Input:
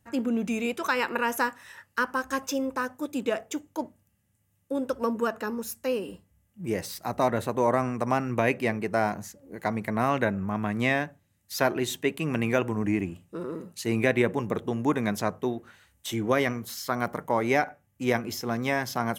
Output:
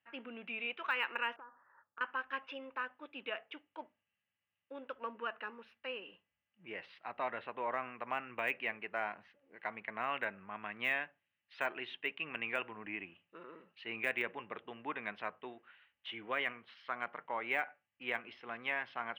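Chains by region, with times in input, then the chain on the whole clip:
0:01.36–0:02.01: Butterworth low-pass 1,400 Hz 48 dB per octave + downward compressor 16 to 1, threshold −36 dBFS
whole clip: elliptic low-pass filter 2,900 Hz, stop band 60 dB; de-essing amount 90%; first difference; level +6.5 dB

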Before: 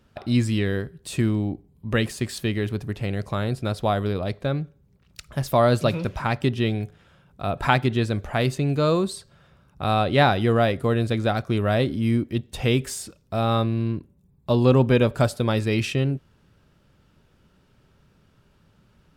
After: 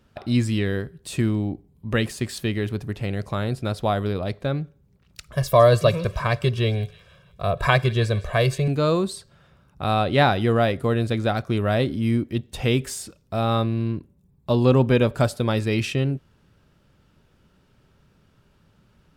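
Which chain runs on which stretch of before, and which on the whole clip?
0:05.33–0:08.68: comb filter 1.8 ms, depth 89% + delay with a high-pass on its return 160 ms, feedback 48%, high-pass 2,200 Hz, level −16 dB
whole clip: no processing

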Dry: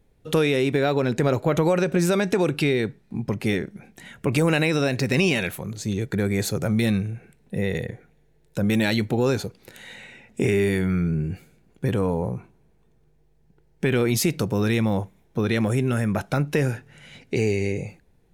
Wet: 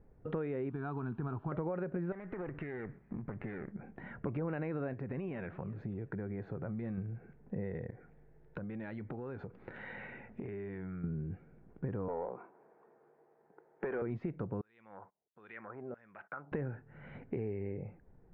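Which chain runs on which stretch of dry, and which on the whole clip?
0:00.70–0:01.52: spike at every zero crossing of −26.5 dBFS + phaser with its sweep stopped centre 2,000 Hz, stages 6
0:02.12–0:03.72: lower of the sound and its delayed copy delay 0.32 ms + parametric band 1,900 Hz +12.5 dB 0.79 octaves + downward compressor 4 to 1, threshold −31 dBFS
0:04.93–0:06.98: downward compressor 2 to 1, threshold −29 dBFS + repeating echo 347 ms, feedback 34%, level −23 dB
0:07.90–0:11.04: downward compressor 4 to 1, threshold −37 dBFS + high-shelf EQ 2,100 Hz +9 dB
0:12.08–0:14.02: high-pass filter 400 Hz + mid-hump overdrive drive 19 dB, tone 1,100 Hz, clips at −11.5 dBFS
0:14.61–0:16.52: noise gate −45 dBFS, range −20 dB + downward compressor 4 to 1, threshold −26 dBFS + auto-filter band-pass saw down 1.5 Hz 480–6,900 Hz
whole clip: low-pass filter 1,600 Hz 24 dB per octave; downward compressor 3 to 1, threshold −40 dBFS

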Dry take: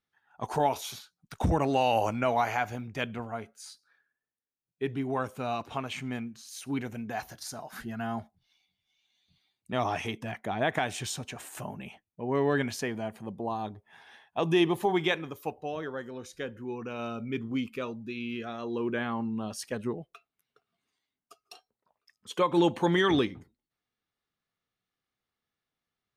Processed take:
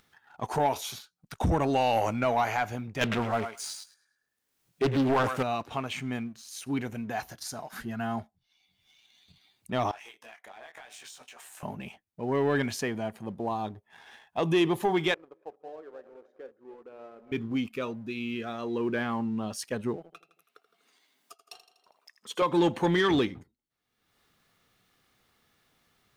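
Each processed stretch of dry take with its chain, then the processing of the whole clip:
0:03.01–0:05.43: leveller curve on the samples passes 2 + feedback echo with a high-pass in the loop 105 ms, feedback 22%, high-pass 970 Hz, level −5 dB + highs frequency-modulated by the lows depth 0.48 ms
0:09.91–0:11.63: high-pass filter 730 Hz + downward compressor 8 to 1, threshold −41 dBFS + micro pitch shift up and down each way 31 cents
0:15.14–0:17.32: feedback delay that plays each chunk backwards 146 ms, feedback 49%, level −12.5 dB + four-pole ladder band-pass 580 Hz, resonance 30%
0:19.96–0:22.42: high-pass filter 300 Hz + repeating echo 81 ms, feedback 49%, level −10 dB
whole clip: upward compression, threshold −46 dBFS; leveller curve on the samples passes 1; level −2 dB

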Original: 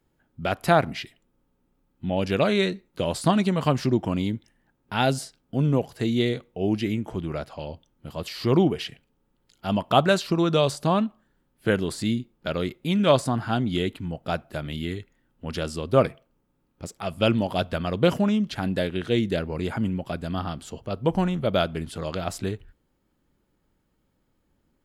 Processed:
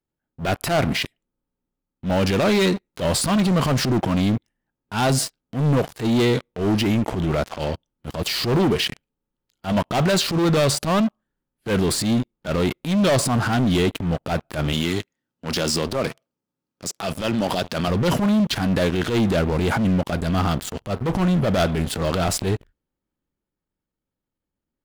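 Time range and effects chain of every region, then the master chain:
0:14.73–0:17.88: high-pass filter 120 Hz + parametric band 5,500 Hz +8.5 dB 1.1 octaves + downward compressor, threshold −26 dBFS
whole clip: leveller curve on the samples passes 5; downward compressor 2 to 1, threshold −13 dBFS; transient designer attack −12 dB, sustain +2 dB; level −5 dB

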